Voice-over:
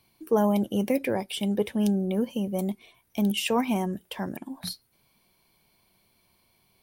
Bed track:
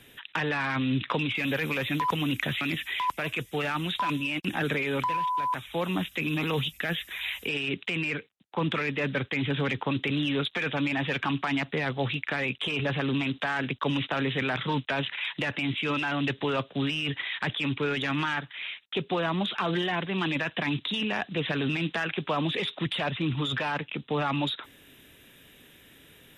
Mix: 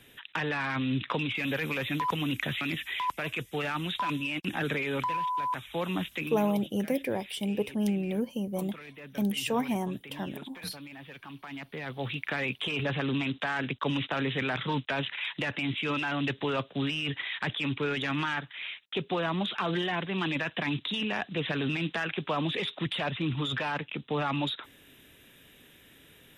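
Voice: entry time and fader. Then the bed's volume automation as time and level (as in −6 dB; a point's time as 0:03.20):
6.00 s, −4.0 dB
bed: 0:06.16 −2.5 dB
0:06.58 −17.5 dB
0:11.26 −17.5 dB
0:12.28 −2 dB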